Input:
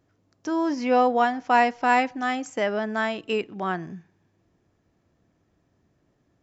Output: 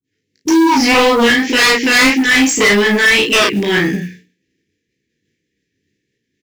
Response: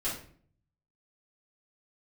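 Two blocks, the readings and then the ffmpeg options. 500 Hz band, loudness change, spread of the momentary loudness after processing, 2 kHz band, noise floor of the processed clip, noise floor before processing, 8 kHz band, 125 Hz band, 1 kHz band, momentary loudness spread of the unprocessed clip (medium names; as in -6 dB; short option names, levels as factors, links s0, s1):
+10.5 dB, +13.5 dB, 6 LU, +17.5 dB, -73 dBFS, -69 dBFS, no reading, +16.0 dB, +4.5 dB, 9 LU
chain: -filter_complex "[0:a]agate=range=0.0224:threshold=0.00251:ratio=3:detection=peak,asuperstop=centerf=910:order=12:qfactor=0.68,adynamicequalizer=threshold=0.0112:dfrequency=1100:dqfactor=0.76:tfrequency=1100:tqfactor=0.76:attack=5:release=100:ratio=0.375:range=1.5:mode=boostabove:tftype=bell,aeval=exprs='0.211*sin(PI/2*3.16*val(0)/0.211)':c=same,flanger=delay=15:depth=5.4:speed=1.8,bandreject=f=60:t=h:w=6,bandreject=f=120:t=h:w=6,bandreject=f=180:t=h:w=6,bandreject=f=240:t=h:w=6,bandreject=f=300:t=h:w=6,asplit=2[s0][s1];[s1]adelay=34,volume=0.596[s2];[s0][s2]amix=inputs=2:normalize=0,acrossover=split=340[s3][s4];[s4]adelay=30[s5];[s3][s5]amix=inputs=2:normalize=0,asplit=2[s6][s7];[s7]highpass=f=720:p=1,volume=12.6,asoftclip=type=tanh:threshold=0.422[s8];[s6][s8]amix=inputs=2:normalize=0,lowpass=f=5200:p=1,volume=0.501,acrusher=bits=7:mode=log:mix=0:aa=0.000001,volume=1.68"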